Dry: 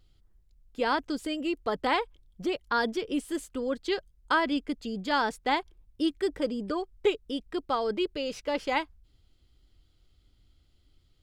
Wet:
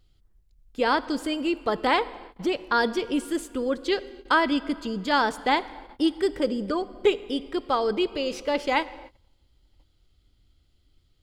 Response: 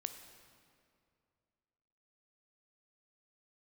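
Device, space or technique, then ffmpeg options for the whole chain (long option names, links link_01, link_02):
keyed gated reverb: -filter_complex "[0:a]asplit=3[link_01][link_02][link_03];[1:a]atrim=start_sample=2205[link_04];[link_02][link_04]afir=irnorm=-1:irlink=0[link_05];[link_03]apad=whole_len=495000[link_06];[link_05][link_06]sidechaingate=range=-28dB:threshold=-56dB:ratio=16:detection=peak,volume=-1.5dB[link_07];[link_01][link_07]amix=inputs=2:normalize=0"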